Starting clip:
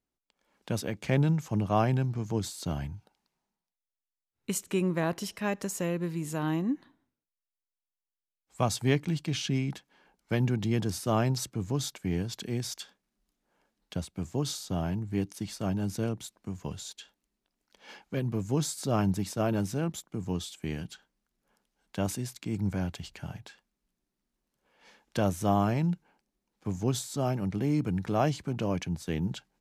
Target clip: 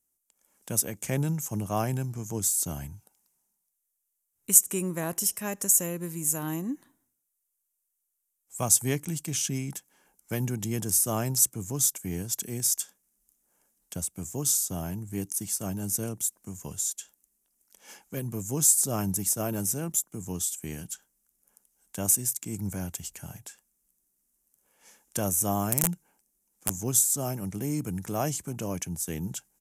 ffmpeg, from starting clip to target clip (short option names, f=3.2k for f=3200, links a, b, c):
-filter_complex "[0:a]asettb=1/sr,asplit=3[a][b][c];[a]atrim=end=25.724[d];[b]atrim=start=25.72:end=26.71,asetpts=PTS-STARTPTS,afade=t=in:d=0.004:c=qsin,afade=t=out:st=0.986:d=0.004:c=qsin,aeval=exprs='(mod(11.9*val(0)+1,2)-1)/11.9':c=same[e];[c]atrim=start=26.706[f];[d][e]acrossfade=d=0.004:c1=hsin:c2=qsin[g];[g][f]acrossfade=d=0.004:c1=qsin:c2=hsin,aexciter=amount=14.2:drive=2.7:freq=6.2k,aresample=32000,aresample=44100,volume=-3dB"